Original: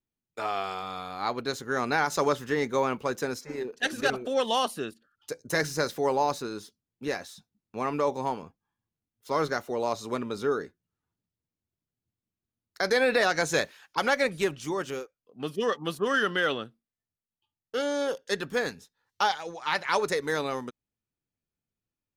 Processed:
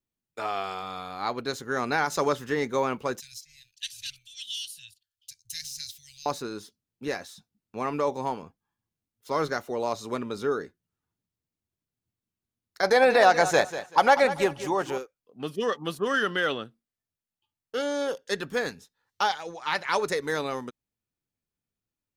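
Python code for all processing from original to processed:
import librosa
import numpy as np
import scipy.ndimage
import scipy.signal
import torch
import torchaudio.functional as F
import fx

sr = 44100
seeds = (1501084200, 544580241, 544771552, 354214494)

y = fx.chain(x, sr, fx.cheby2_bandstop(low_hz=260.0, high_hz=1100.0, order=4, stop_db=60),
    fx.low_shelf(hz=180.0, db=-7.5), at=(3.2, 6.26))
y = fx.chain(y, sr, fx.peak_eq(hz=780.0, db=11.5, octaves=0.94),
    fx.echo_feedback(ms=192, feedback_pct=23, wet_db=-12.5), at=(12.83, 14.98))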